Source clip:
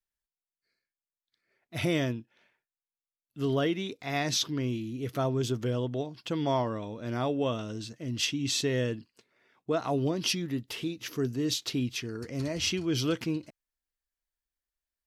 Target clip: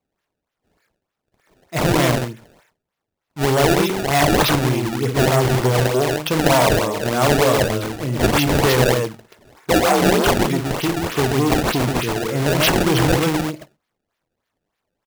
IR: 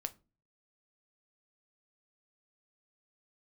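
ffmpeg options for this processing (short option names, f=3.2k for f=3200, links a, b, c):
-filter_complex "[0:a]highshelf=f=2.9k:g=-8.5,asplit=2[a][b];[1:a]atrim=start_sample=2205,atrim=end_sample=6174[c];[b][c]afir=irnorm=-1:irlink=0,volume=6dB[d];[a][d]amix=inputs=2:normalize=0,acontrast=36,acrossover=split=5000[e][f];[e]asoftclip=type=hard:threshold=-14dB[g];[g][f]amix=inputs=2:normalize=0,asettb=1/sr,asplit=3[h][i][j];[h]atrim=end=9.704[k];[i]atrim=start=9.7:end=10.38,asetpts=PTS-STARTPTS,afade=t=in:d=0.004:c=qsin,afade=t=out:st=0.676:d=0.004:c=qsin,afreqshift=49[l];[j]atrim=start=10.376[m];[k][l]acrossfade=d=0.004:c1=hsin:c2=qsin[n];[n][m]acrossfade=d=0.004:c1=qsin:c2=hsin,equalizer=f=240:t=o:w=1.1:g=-11.5,aecho=1:1:55.39|131.2:0.398|0.708,aeval=exprs='0.224*(abs(mod(val(0)/0.224+3,4)-2)-1)':c=same,highpass=f=130:w=0.5412,highpass=f=130:w=1.3066,acrusher=samples=24:mix=1:aa=0.000001:lfo=1:lforange=38.4:lforate=3.3,volume=5dB"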